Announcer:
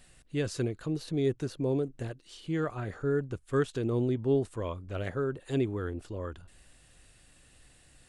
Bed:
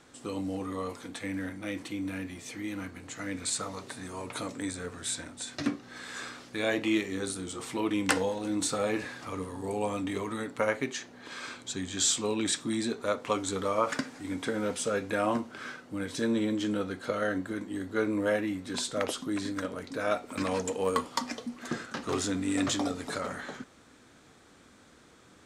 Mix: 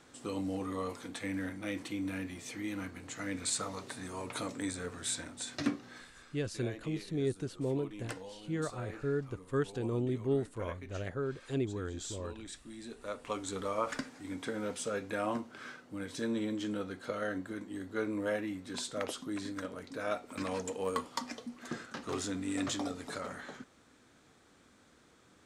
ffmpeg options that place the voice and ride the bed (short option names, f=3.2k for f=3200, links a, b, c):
-filter_complex "[0:a]adelay=6000,volume=-4.5dB[a];[1:a]volume=9.5dB,afade=t=out:st=5.84:d=0.27:silence=0.16788,afade=t=in:st=12.76:d=0.8:silence=0.266073[b];[a][b]amix=inputs=2:normalize=0"